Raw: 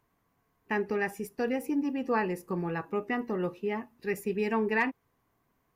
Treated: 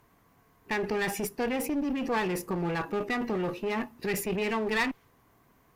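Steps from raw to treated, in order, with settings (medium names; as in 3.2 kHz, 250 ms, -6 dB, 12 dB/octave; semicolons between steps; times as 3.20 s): dynamic bell 3.3 kHz, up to +7 dB, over -49 dBFS, Q 0.81; in parallel at -0.5 dB: compressor with a negative ratio -36 dBFS, ratio -0.5; on the sum: one-sided clip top -30 dBFS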